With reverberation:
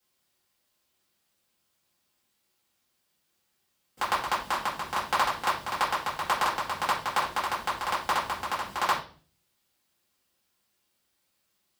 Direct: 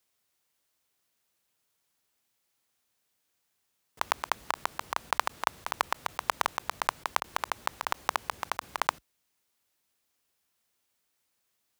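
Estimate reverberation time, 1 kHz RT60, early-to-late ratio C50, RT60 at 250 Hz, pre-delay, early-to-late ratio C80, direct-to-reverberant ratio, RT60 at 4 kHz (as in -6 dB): 0.40 s, 0.35 s, 6.5 dB, 0.60 s, 4 ms, 12.5 dB, -8.5 dB, 0.40 s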